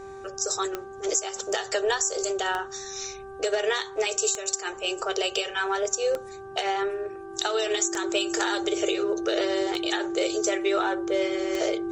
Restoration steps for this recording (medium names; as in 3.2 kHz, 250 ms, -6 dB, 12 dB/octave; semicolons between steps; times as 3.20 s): de-click; de-hum 390.2 Hz, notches 4; band-stop 340 Hz, Q 30